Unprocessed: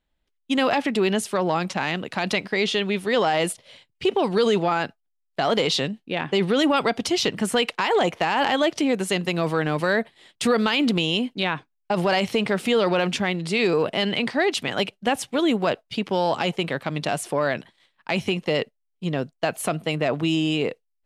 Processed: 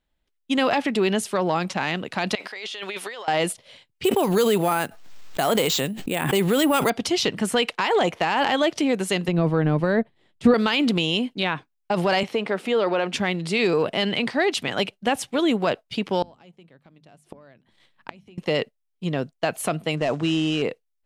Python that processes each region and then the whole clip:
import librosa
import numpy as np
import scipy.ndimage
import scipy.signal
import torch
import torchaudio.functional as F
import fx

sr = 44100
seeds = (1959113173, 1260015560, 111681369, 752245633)

y = fx.chain(x, sr, fx.highpass(hz=680.0, slope=12),
    fx.over_compress(threshold_db=-34.0, ratio=-1.0), at=(2.35, 3.28))
y = fx.chain(y, sr, fx.sample_hold(seeds[0], rate_hz=11000.0, jitter_pct=0),
    fx.pre_swell(db_per_s=51.0), at=(4.04, 6.9))
y = fx.chain(y, sr, fx.tilt_eq(slope=-3.5),
    fx.upward_expand(threshold_db=-33.0, expansion=1.5), at=(9.28, 10.54))
y = fx.chain(y, sr, fx.highpass(hz=270.0, slope=12),
    fx.high_shelf(hz=3200.0, db=-10.5), at=(12.23, 13.14))
y = fx.chain(y, sr, fx.low_shelf(hz=340.0, db=10.0),
    fx.gate_flip(shuts_db=-19.0, range_db=-30),
    fx.hum_notches(base_hz=50, count=5), at=(16.22, 18.38))
y = fx.chain(y, sr, fx.cvsd(bps=64000),
    fx.lowpass(hz=7700.0, slope=24), at=(19.97, 20.62))